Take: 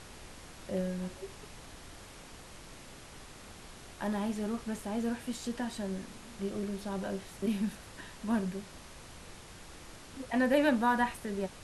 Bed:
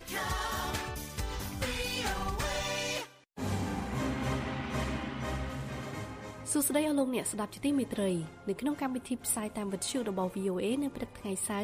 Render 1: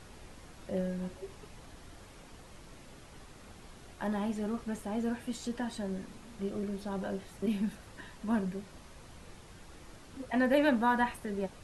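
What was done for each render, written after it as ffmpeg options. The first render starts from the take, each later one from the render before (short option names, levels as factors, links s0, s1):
-af "afftdn=nr=6:nf=-51"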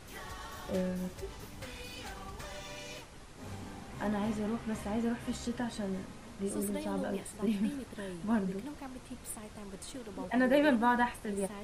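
-filter_complex "[1:a]volume=0.266[s0];[0:a][s0]amix=inputs=2:normalize=0"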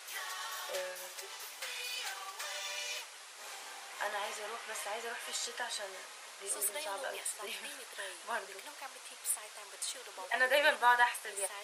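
-af "highpass=f=460:w=0.5412,highpass=f=460:w=1.3066,tiltshelf=f=770:g=-8.5"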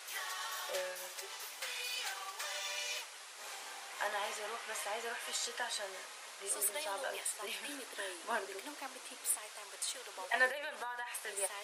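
-filter_complex "[0:a]asettb=1/sr,asplit=3[s0][s1][s2];[s0]atrim=end=7.684[s3];[s1]atrim=start=7.68:end=9.37,asetpts=PTS-STARTPTS,afade=t=in:d=0.004:c=qsin,afade=t=out:st=1.686:d=0.004:c=qsin,highpass=f=280:t=q:w=4.9[s4];[s2]atrim=start=9.366[s5];[s3][s4]acrossfade=d=0.004:c1=hsin:c2=qsin[s6];[s6][s5]acrossfade=d=0.004:c1=qsin:c2=hsin,asettb=1/sr,asplit=3[s7][s8][s9];[s7]atrim=end=10.504[s10];[s8]atrim=start=10.5:end=11.15,asetpts=PTS-STARTPTS,afade=t=in:d=0.004:c=qsin,afade=t=out:st=0.646:d=0.004:c=qsin,acompressor=threshold=0.0141:ratio=20:attack=3.2:release=140:knee=1:detection=peak[s11];[s9]atrim=start=11.146[s12];[s10][s11]acrossfade=d=0.004:c1=hsin:c2=qsin[s13];[s13][s12]acrossfade=d=0.004:c1=qsin:c2=hsin"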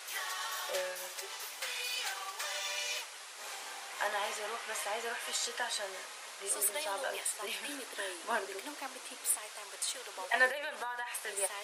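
-af "volume=1.41"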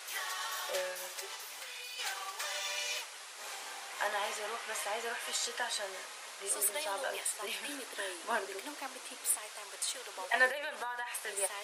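-filter_complex "[0:a]asplit=3[s0][s1][s2];[s0]afade=t=out:st=1.35:d=0.02[s3];[s1]acompressor=threshold=0.00891:ratio=6:attack=3.2:release=140:knee=1:detection=peak,afade=t=in:st=1.35:d=0.02,afade=t=out:st=1.98:d=0.02[s4];[s2]afade=t=in:st=1.98:d=0.02[s5];[s3][s4][s5]amix=inputs=3:normalize=0"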